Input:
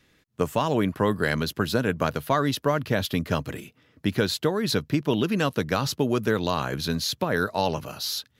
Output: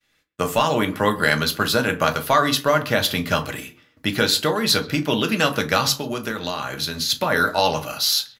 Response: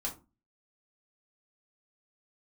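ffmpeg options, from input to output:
-filter_complex "[0:a]agate=range=-33dB:threshold=-54dB:ratio=3:detection=peak,tiltshelf=frequency=720:gain=-5.5,asplit=3[link_01][link_02][link_03];[link_01]afade=type=out:start_time=5.93:duration=0.02[link_04];[link_02]acompressor=threshold=-27dB:ratio=6,afade=type=in:start_time=5.93:duration=0.02,afade=type=out:start_time=7.09:duration=0.02[link_05];[link_03]afade=type=in:start_time=7.09:duration=0.02[link_06];[link_04][link_05][link_06]amix=inputs=3:normalize=0,asplit=2[link_07][link_08];[link_08]adelay=130,highpass=300,lowpass=3400,asoftclip=type=hard:threshold=-14.5dB,volume=-20dB[link_09];[link_07][link_09]amix=inputs=2:normalize=0,asplit=2[link_10][link_11];[1:a]atrim=start_sample=2205[link_12];[link_11][link_12]afir=irnorm=-1:irlink=0,volume=-1dB[link_13];[link_10][link_13]amix=inputs=2:normalize=0"

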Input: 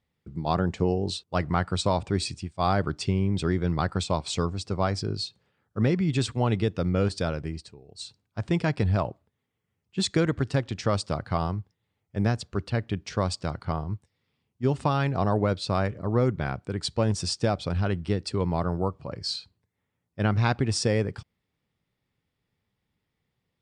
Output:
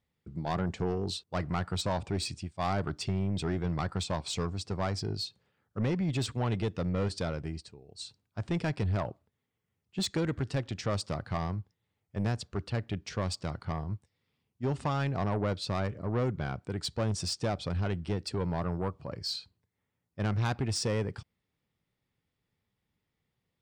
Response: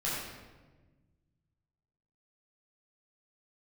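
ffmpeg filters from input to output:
-af "asoftclip=type=tanh:threshold=-21dB,volume=-3dB"

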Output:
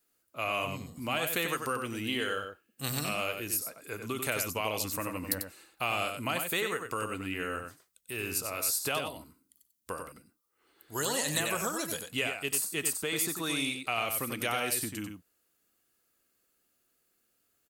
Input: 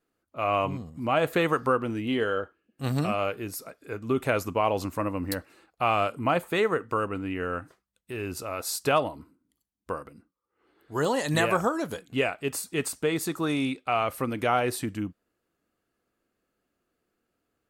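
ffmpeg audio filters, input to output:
ffmpeg -i in.wav -filter_complex "[0:a]crystalizer=i=6.5:c=0,acrossover=split=700|1500[link_01][link_02][link_03];[link_01]acompressor=threshold=-29dB:ratio=4[link_04];[link_02]acompressor=threshold=-37dB:ratio=4[link_05];[link_03]acompressor=threshold=-24dB:ratio=4[link_06];[link_04][link_05][link_06]amix=inputs=3:normalize=0,asplit=2[link_07][link_08];[link_08]adelay=93.29,volume=-6dB,highshelf=frequency=4000:gain=-2.1[link_09];[link_07][link_09]amix=inputs=2:normalize=0,volume=-6dB" out.wav

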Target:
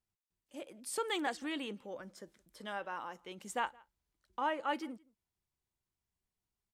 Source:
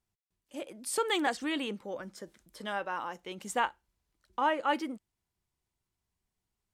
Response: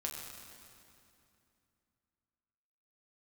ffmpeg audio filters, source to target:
-filter_complex "[0:a]asplit=2[link_01][link_02];[link_02]adelay=169.1,volume=-26dB,highshelf=frequency=4000:gain=-3.8[link_03];[link_01][link_03]amix=inputs=2:normalize=0,volume=-6dB"

